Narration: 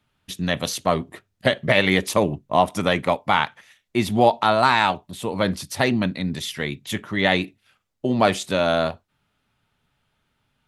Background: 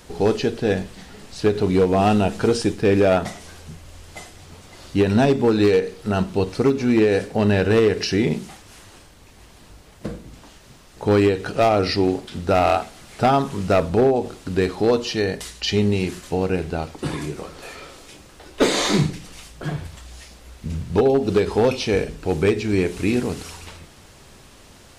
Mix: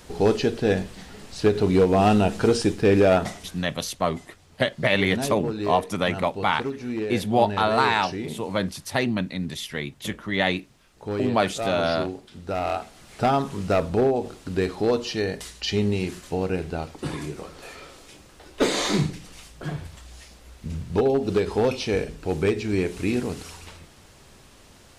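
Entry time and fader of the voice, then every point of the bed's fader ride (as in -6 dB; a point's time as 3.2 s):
3.15 s, -3.5 dB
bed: 3.27 s -1 dB
3.85 s -12 dB
12.36 s -12 dB
13.13 s -4 dB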